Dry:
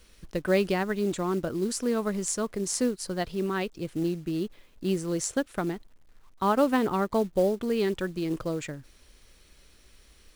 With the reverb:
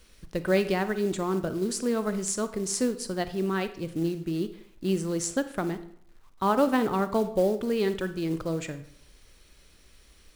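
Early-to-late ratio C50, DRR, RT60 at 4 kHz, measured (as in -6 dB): 13.0 dB, 11.0 dB, 0.45 s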